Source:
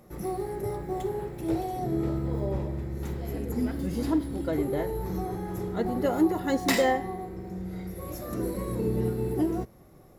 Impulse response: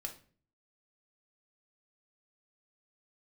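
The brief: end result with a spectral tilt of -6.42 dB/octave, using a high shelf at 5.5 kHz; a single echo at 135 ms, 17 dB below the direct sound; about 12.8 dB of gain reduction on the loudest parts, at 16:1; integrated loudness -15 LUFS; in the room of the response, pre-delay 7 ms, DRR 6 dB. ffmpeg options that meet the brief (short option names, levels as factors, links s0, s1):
-filter_complex "[0:a]highshelf=f=5500:g=-8.5,acompressor=threshold=0.0316:ratio=16,aecho=1:1:135:0.141,asplit=2[s0][s1];[1:a]atrim=start_sample=2205,adelay=7[s2];[s1][s2]afir=irnorm=-1:irlink=0,volume=0.596[s3];[s0][s3]amix=inputs=2:normalize=0,volume=10"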